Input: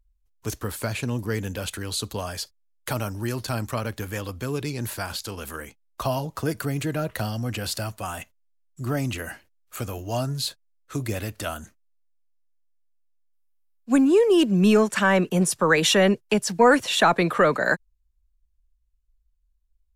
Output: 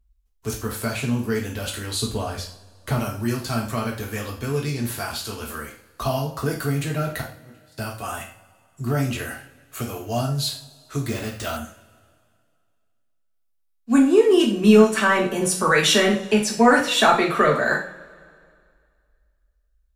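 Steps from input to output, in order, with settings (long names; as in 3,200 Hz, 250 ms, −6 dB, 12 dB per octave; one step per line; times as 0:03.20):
0:02.01–0:02.98: spectral tilt −2 dB per octave
0:07.21–0:07.78: noise gate −23 dBFS, range −31 dB
convolution reverb, pre-delay 3 ms, DRR −2.5 dB
0:11.08–0:11.57: bad sample-rate conversion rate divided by 3×, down none, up hold
level −2 dB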